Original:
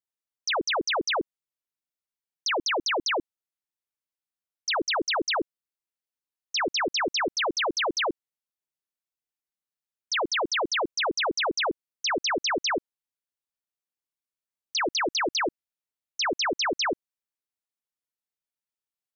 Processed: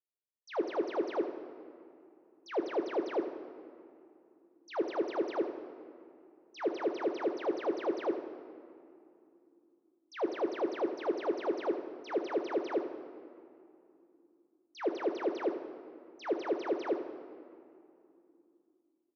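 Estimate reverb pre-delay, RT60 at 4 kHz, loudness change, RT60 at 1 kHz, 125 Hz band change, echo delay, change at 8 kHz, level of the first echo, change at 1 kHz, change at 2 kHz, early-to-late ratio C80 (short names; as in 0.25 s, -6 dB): 9 ms, 1.5 s, -8.5 dB, 2.6 s, under -10 dB, 78 ms, n/a, -10.5 dB, -11.0 dB, -18.0 dB, 9.5 dB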